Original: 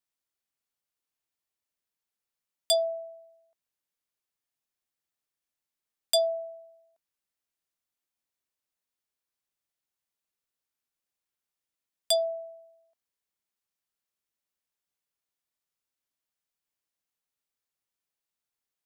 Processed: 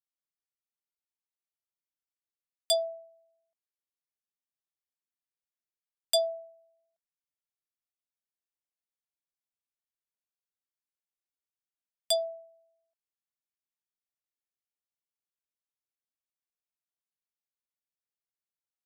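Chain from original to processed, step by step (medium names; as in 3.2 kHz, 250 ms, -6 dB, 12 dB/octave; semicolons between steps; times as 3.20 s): upward expansion 1.5:1, over -45 dBFS; trim -1 dB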